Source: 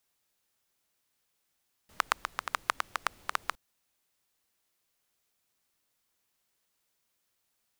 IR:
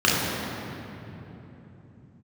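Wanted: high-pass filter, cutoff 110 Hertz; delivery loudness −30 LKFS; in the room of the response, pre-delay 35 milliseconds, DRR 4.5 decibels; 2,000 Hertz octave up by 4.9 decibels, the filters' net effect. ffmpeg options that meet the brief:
-filter_complex "[0:a]highpass=110,equalizer=frequency=2000:width_type=o:gain=6.5,asplit=2[link_01][link_02];[1:a]atrim=start_sample=2205,adelay=35[link_03];[link_02][link_03]afir=irnorm=-1:irlink=0,volume=-25dB[link_04];[link_01][link_04]amix=inputs=2:normalize=0,volume=0.5dB"

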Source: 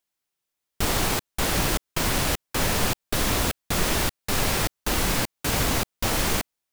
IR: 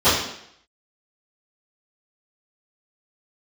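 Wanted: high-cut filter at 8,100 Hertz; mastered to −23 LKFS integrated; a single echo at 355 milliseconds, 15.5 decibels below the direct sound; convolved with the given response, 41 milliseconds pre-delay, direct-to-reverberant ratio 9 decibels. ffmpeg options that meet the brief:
-filter_complex "[0:a]lowpass=8100,aecho=1:1:355:0.168,asplit=2[link_01][link_02];[1:a]atrim=start_sample=2205,adelay=41[link_03];[link_02][link_03]afir=irnorm=-1:irlink=0,volume=-32dB[link_04];[link_01][link_04]amix=inputs=2:normalize=0,volume=2.5dB"

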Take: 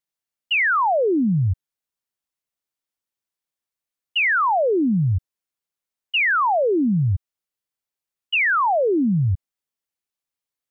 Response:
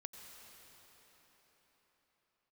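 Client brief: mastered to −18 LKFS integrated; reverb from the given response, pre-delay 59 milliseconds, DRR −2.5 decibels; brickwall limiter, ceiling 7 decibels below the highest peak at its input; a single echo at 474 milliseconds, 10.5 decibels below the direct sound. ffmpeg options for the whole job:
-filter_complex "[0:a]alimiter=limit=-22.5dB:level=0:latency=1,aecho=1:1:474:0.299,asplit=2[link_01][link_02];[1:a]atrim=start_sample=2205,adelay=59[link_03];[link_02][link_03]afir=irnorm=-1:irlink=0,volume=6.5dB[link_04];[link_01][link_04]amix=inputs=2:normalize=0,volume=5.5dB"

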